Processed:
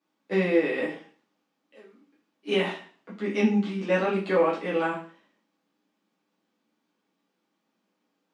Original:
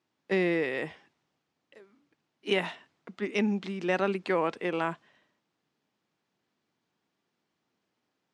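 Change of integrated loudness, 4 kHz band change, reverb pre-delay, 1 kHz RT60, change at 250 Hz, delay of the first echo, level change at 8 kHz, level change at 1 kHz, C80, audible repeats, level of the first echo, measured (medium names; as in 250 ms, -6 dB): +4.0 dB, +1.5 dB, 4 ms, 0.40 s, +4.5 dB, no echo, no reading, +2.5 dB, 12.0 dB, no echo, no echo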